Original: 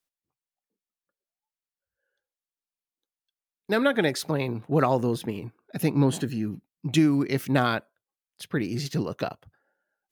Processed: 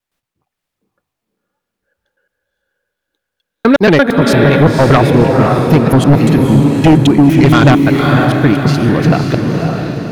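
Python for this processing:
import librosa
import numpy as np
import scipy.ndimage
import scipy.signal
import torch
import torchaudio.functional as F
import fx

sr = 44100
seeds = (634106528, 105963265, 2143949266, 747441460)

y = fx.block_reorder(x, sr, ms=114.0, group=2)
y = fx.bass_treble(y, sr, bass_db=4, treble_db=-8)
y = fx.echo_diffused(y, sr, ms=534, feedback_pct=47, wet_db=-4.0)
y = fx.fold_sine(y, sr, drive_db=7, ceiling_db=-7.0)
y = y * librosa.db_to_amplitude(5.5)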